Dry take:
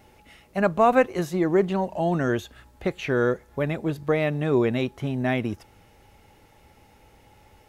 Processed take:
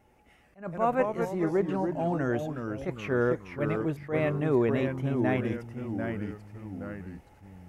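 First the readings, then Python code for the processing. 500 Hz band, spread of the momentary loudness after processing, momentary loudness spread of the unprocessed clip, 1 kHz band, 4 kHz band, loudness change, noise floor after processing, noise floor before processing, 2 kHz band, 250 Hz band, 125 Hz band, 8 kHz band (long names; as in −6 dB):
−4.5 dB, 13 LU, 10 LU, −6.5 dB, −10.0 dB, −5.0 dB, −61 dBFS, −56 dBFS, −6.0 dB, −3.5 dB, −2.5 dB, can't be measured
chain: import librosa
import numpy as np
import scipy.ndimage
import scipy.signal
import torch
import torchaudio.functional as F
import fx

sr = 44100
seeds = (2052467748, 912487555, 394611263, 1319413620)

y = fx.high_shelf(x, sr, hz=7600.0, db=-5.5)
y = fx.rider(y, sr, range_db=10, speed_s=2.0)
y = fx.peak_eq(y, sr, hz=4100.0, db=-9.0, octaves=0.87)
y = fx.echo_pitch(y, sr, ms=101, semitones=-2, count=3, db_per_echo=-6.0)
y = fx.attack_slew(y, sr, db_per_s=220.0)
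y = y * librosa.db_to_amplitude(-4.5)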